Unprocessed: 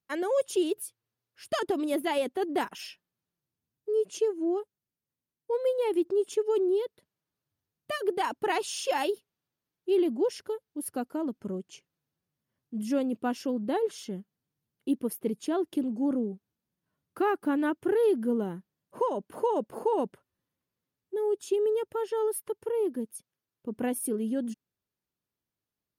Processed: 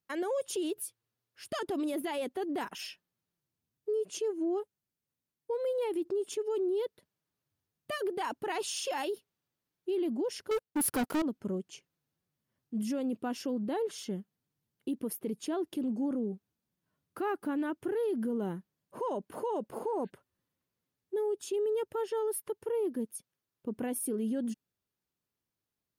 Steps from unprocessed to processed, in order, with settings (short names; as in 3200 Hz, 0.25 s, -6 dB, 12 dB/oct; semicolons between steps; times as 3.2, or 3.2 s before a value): 10.51–11.22 sample leveller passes 5; 19.79–20.07 spectral repair 1500–4600 Hz before; limiter -26.5 dBFS, peak gain reduction 9 dB